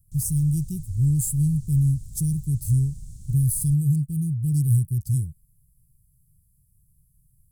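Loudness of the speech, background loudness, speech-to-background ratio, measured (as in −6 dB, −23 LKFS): −23.5 LKFS, −43.0 LKFS, 19.5 dB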